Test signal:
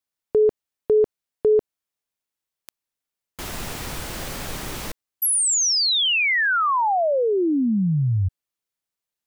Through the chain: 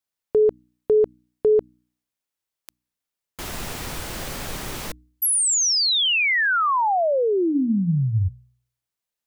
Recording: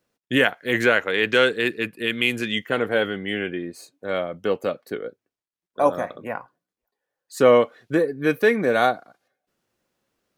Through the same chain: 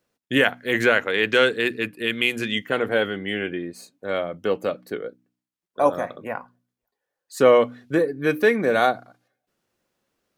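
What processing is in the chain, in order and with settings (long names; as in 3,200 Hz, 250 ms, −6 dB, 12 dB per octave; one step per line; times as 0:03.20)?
hum removal 61.12 Hz, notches 5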